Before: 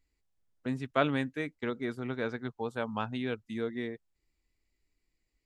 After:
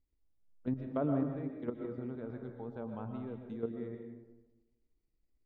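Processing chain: low-pass that closes with the level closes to 1.1 kHz, closed at -27.5 dBFS; peaking EQ 2.1 kHz -13 dB 2.2 oct; level held to a coarse grid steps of 11 dB; distance through air 160 m; reverberation RT60 1.1 s, pre-delay 85 ms, DRR 4 dB; trim +2 dB

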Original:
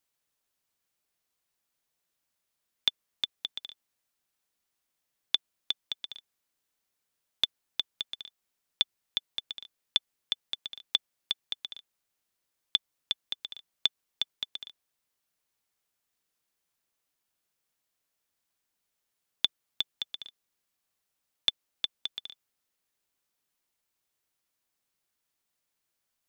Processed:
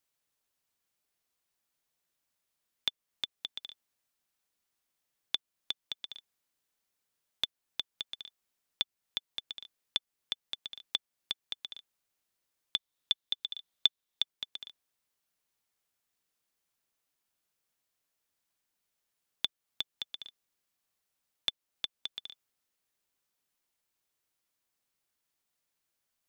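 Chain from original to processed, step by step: 12.76–14.22 s: peaking EQ 3.6 kHz +8.5 dB 0.3 oct; in parallel at +0.5 dB: compression, threshold -36 dBFS, peak gain reduction 21.5 dB; on the sum: trim -7.5 dB

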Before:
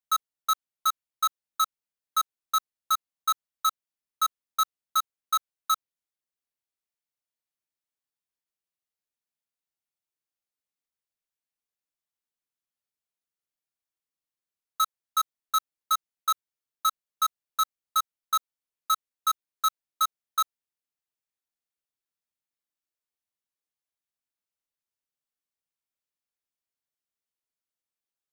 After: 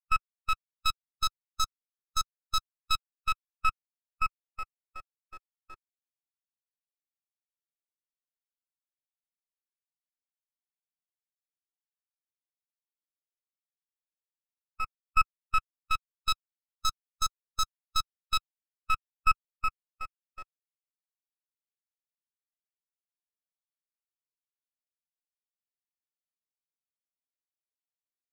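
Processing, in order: expander on every frequency bin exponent 1.5; LFO low-pass sine 0.13 Hz 420–5800 Hz; half-wave rectifier

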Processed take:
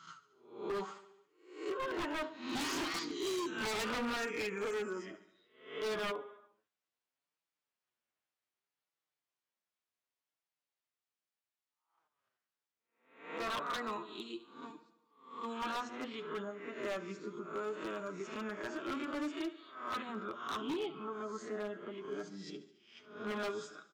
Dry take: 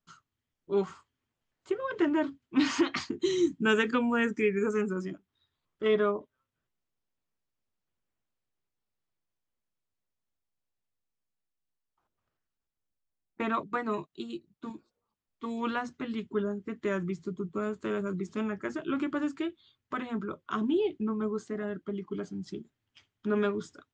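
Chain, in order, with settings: reverse spectral sustain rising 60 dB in 0.56 s; feedback delay 71 ms, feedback 58%, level -15 dB; flange 0.67 Hz, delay 5.9 ms, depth 3.8 ms, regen +26%; dynamic bell 2 kHz, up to -6 dB, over -50 dBFS, Q 1.2; high-pass 440 Hz 6 dB/octave, from 0.72 s 940 Hz; treble shelf 6.9 kHz -11 dB; wavefolder -35.5 dBFS; trim +4 dB

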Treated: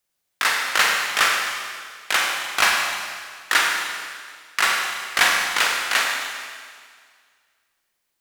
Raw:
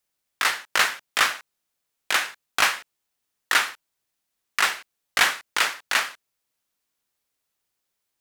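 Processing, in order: Schroeder reverb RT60 1.9 s, combs from 33 ms, DRR 0 dB; trim +1 dB

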